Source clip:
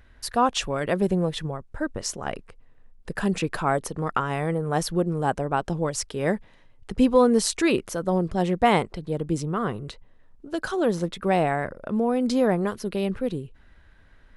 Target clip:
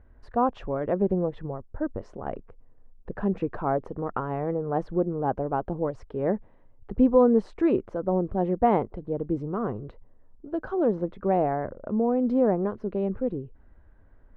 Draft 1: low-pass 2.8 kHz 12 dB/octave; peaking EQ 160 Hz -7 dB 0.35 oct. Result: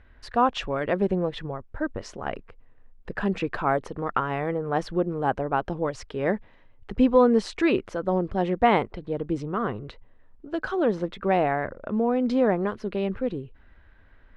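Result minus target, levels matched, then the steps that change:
2 kHz band +10.5 dB
change: low-pass 860 Hz 12 dB/octave

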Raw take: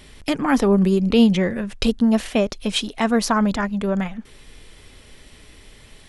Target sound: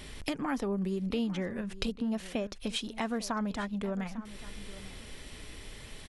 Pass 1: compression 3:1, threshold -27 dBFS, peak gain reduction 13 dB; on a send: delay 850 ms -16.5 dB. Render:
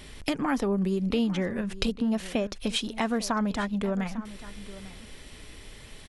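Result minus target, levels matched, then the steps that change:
compression: peak gain reduction -5.5 dB
change: compression 3:1, threshold -35.5 dBFS, peak gain reduction 18.5 dB

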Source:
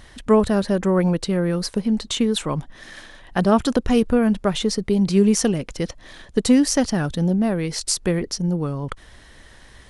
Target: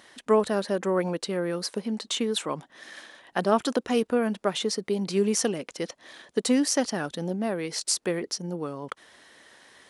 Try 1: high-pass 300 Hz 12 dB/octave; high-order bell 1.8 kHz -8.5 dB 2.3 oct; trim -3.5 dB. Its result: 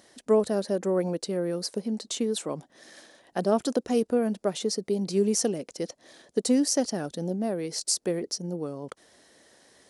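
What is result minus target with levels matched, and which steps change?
2 kHz band -8.0 dB
remove: high-order bell 1.8 kHz -8.5 dB 2.3 oct

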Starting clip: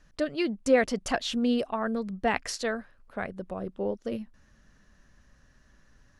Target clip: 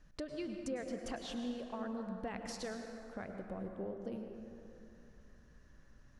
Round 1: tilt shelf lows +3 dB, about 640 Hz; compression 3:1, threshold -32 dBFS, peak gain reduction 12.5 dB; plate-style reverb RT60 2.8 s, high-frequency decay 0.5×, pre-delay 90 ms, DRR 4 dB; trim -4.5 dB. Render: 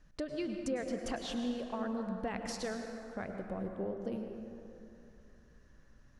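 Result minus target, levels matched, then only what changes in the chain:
compression: peak gain reduction -4.5 dB
change: compression 3:1, threshold -38.5 dBFS, peak gain reduction 17 dB

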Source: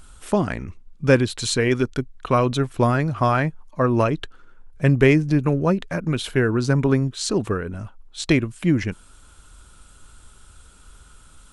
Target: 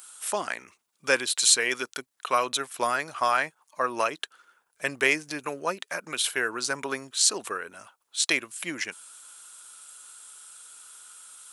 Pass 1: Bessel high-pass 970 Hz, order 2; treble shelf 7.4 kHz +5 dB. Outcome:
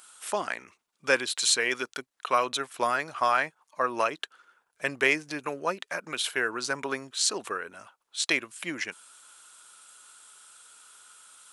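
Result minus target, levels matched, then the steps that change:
8 kHz band -3.5 dB
change: treble shelf 7.4 kHz +15.5 dB

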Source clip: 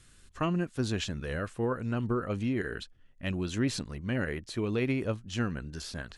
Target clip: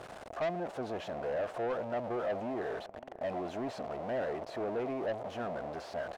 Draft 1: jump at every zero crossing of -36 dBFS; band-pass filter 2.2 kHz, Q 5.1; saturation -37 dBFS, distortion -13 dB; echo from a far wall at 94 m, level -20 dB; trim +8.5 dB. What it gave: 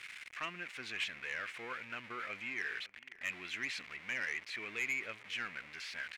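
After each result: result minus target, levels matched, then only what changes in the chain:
500 Hz band -16.5 dB; jump at every zero crossing: distortion -7 dB
change: band-pass filter 660 Hz, Q 5.1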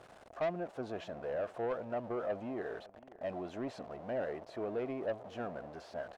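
jump at every zero crossing: distortion -7 dB
change: jump at every zero crossing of -26 dBFS

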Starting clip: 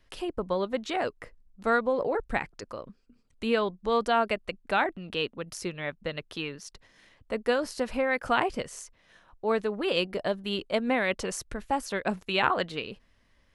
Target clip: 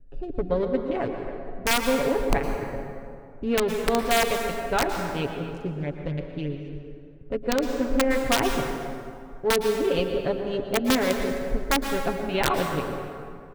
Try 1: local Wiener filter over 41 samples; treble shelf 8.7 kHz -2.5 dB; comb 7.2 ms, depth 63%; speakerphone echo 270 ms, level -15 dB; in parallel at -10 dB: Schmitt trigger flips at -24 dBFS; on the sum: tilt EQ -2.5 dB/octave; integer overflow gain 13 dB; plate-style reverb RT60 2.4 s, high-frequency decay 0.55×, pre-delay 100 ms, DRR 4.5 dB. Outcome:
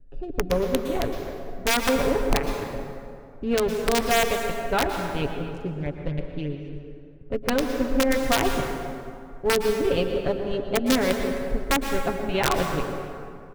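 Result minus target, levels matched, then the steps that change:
Schmitt trigger: distortion -20 dB
change: Schmitt trigger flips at -15 dBFS

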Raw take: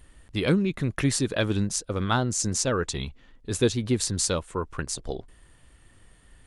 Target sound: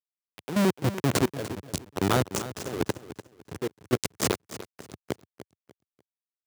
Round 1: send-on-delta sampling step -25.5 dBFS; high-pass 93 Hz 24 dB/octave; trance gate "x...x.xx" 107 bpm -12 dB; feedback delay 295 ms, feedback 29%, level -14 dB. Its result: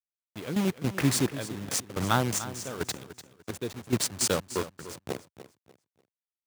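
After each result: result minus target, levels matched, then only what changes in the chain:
send-on-delta sampling: distortion -16 dB; 500 Hz band -2.5 dB
change: send-on-delta sampling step -16 dBFS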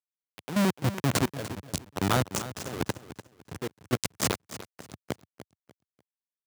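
500 Hz band -3.0 dB
add after high-pass: dynamic bell 390 Hz, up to +6 dB, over -41 dBFS, Q 1.7

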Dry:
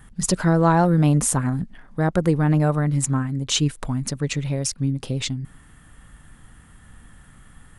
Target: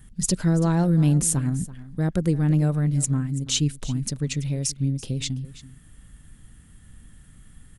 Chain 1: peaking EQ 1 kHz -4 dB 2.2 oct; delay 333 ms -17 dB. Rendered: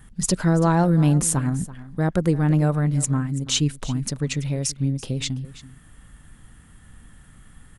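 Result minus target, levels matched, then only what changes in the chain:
1 kHz band +7.0 dB
change: peaking EQ 1 kHz -13 dB 2.2 oct

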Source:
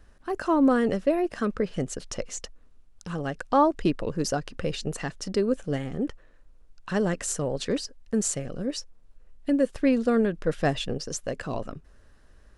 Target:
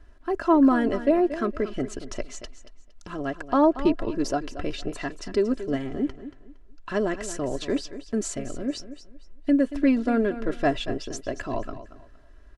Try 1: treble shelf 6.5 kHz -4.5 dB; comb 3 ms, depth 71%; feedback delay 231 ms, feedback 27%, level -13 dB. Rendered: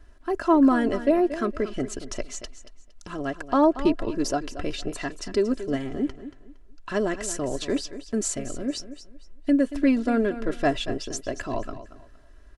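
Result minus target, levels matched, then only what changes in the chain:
8 kHz band +5.0 dB
change: treble shelf 6.5 kHz -13.5 dB

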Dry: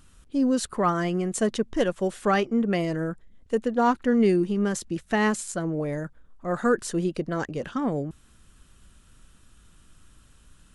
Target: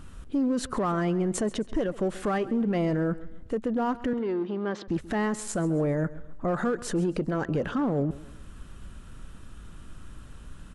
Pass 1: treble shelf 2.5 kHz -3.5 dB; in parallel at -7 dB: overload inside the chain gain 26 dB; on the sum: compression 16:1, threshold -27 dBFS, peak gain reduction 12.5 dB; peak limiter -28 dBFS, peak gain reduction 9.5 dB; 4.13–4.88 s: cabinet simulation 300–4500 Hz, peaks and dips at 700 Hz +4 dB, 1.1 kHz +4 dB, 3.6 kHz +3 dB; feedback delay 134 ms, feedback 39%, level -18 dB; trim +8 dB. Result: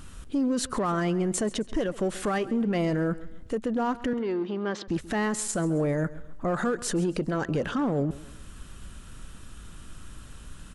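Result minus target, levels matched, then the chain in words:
4 kHz band +4.0 dB
treble shelf 2.5 kHz -12 dB; in parallel at -7 dB: overload inside the chain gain 26 dB; on the sum: compression 16:1, threshold -27 dBFS, peak gain reduction 12.5 dB; peak limiter -28 dBFS, peak gain reduction 9.5 dB; 4.13–4.88 s: cabinet simulation 300–4500 Hz, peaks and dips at 700 Hz +4 dB, 1.1 kHz +4 dB, 3.6 kHz +3 dB; feedback delay 134 ms, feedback 39%, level -18 dB; trim +8 dB

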